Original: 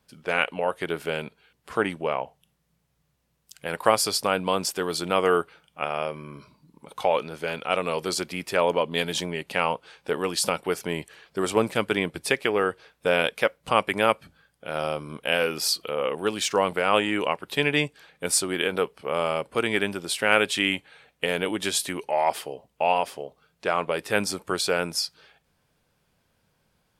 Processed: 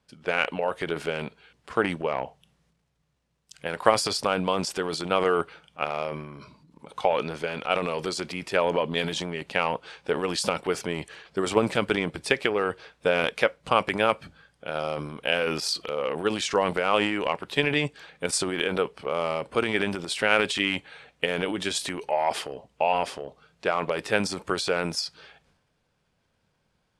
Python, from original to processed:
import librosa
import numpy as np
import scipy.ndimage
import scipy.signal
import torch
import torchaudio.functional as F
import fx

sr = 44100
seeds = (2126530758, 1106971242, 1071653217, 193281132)

y = fx.transient(x, sr, attack_db=5, sustain_db=9)
y = scipy.signal.sosfilt(scipy.signal.bessel(4, 7200.0, 'lowpass', norm='mag', fs=sr, output='sos'), y)
y = F.gain(torch.from_numpy(y), -3.5).numpy()